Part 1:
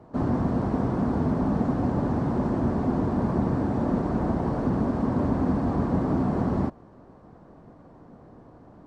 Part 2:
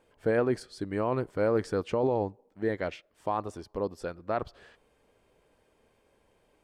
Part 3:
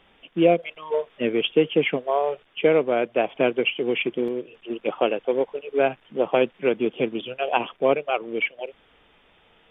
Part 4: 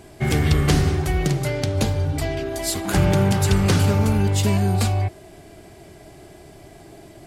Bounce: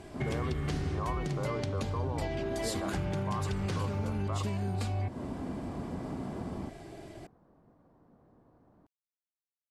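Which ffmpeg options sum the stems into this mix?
-filter_complex "[0:a]volume=-13.5dB[a];[1:a]volume=-7dB[b];[3:a]lowpass=11k,volume=-3dB[c];[a][c]amix=inputs=2:normalize=0,highshelf=f=6.6k:g=-7.5,alimiter=limit=-19dB:level=0:latency=1:release=399,volume=0dB[d];[b]lowpass=f=1.1k:t=q:w=9.3,alimiter=limit=-23.5dB:level=0:latency=1,volume=0dB[e];[d][e]amix=inputs=2:normalize=0,acompressor=threshold=-31dB:ratio=3"

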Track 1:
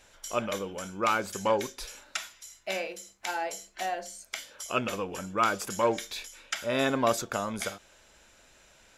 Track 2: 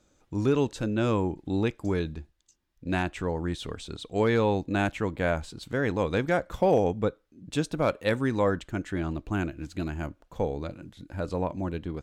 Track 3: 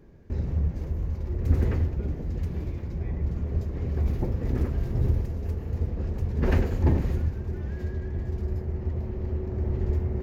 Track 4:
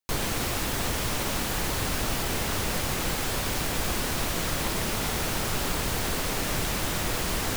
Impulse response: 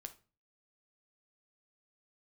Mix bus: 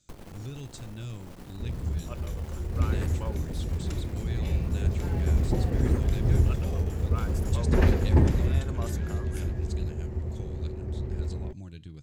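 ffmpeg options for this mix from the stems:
-filter_complex "[0:a]highshelf=f=8.6k:g=11,adelay=1750,volume=-15.5dB[a];[1:a]equalizer=f=125:t=o:w=1:g=10,equalizer=f=250:t=o:w=1:g=-4,equalizer=f=500:t=o:w=1:g=-7,equalizer=f=1k:t=o:w=1:g=-10,equalizer=f=4k:t=o:w=1:g=7,equalizer=f=8k:t=o:w=1:g=12,volume=-9dB,asplit=2[b][c];[c]volume=-10dB[d];[2:a]dynaudnorm=f=380:g=11:m=8.5dB,adelay=1300,volume=-5.5dB[e];[3:a]tiltshelf=f=970:g=7,aeval=exprs='(tanh(10*val(0)+0.75)-tanh(0.75))/10':c=same,volume=-7.5dB[f];[b][f]amix=inputs=2:normalize=0,acompressor=threshold=-41dB:ratio=4,volume=0dB[g];[4:a]atrim=start_sample=2205[h];[d][h]afir=irnorm=-1:irlink=0[i];[a][e][g][i]amix=inputs=4:normalize=0"

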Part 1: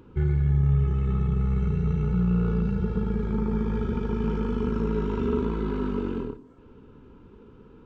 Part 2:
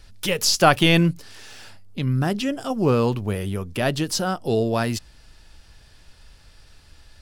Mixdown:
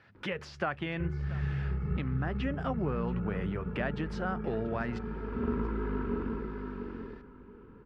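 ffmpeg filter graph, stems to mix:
-filter_complex "[0:a]adelay=150,volume=-6.5dB,asplit=2[a][b];[b]volume=-5.5dB[c];[1:a]highpass=f=110:w=0.5412,highpass=f=110:w=1.3066,acompressor=threshold=-26dB:ratio=10,volume=-4.5dB,asplit=3[d][e][f];[e]volume=-19dB[g];[f]apad=whole_len=353103[h];[a][h]sidechaincompress=threshold=-56dB:ratio=8:attack=16:release=323[i];[c][g]amix=inputs=2:normalize=0,aecho=0:1:684|1368|2052:1|0.19|0.0361[j];[i][d][j]amix=inputs=3:normalize=0,lowpass=f=1.8k:t=q:w=1.9"

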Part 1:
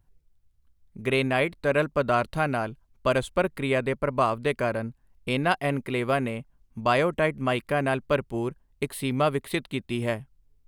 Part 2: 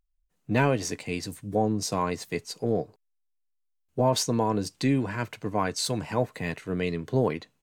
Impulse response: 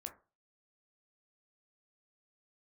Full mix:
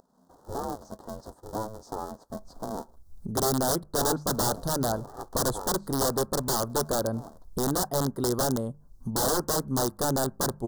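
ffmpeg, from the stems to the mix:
-filter_complex "[0:a]bandreject=f=50:t=h:w=6,bandreject=f=100:t=h:w=6,bandreject=f=150:t=h:w=6,bandreject=f=200:t=h:w=6,aeval=exprs='(mod(8.91*val(0)+1,2)-1)/8.91':c=same,adelay=2300,volume=0.5dB,asplit=2[a][b];[b]volume=-14.5dB[c];[1:a]bandpass=f=700:t=q:w=2:csg=0,aeval=exprs='val(0)*sgn(sin(2*PI*220*n/s))':c=same,volume=-5.5dB,afade=t=out:st=5.39:d=0.72:silence=0.281838,asplit=2[d][e];[e]volume=-14.5dB[f];[2:a]atrim=start_sample=2205[g];[c][f]amix=inputs=2:normalize=0[h];[h][g]afir=irnorm=-1:irlink=0[i];[a][d][i]amix=inputs=3:normalize=0,acompressor=mode=upward:threshold=-27dB:ratio=2.5,asuperstop=centerf=2400:order=4:qfactor=0.67"

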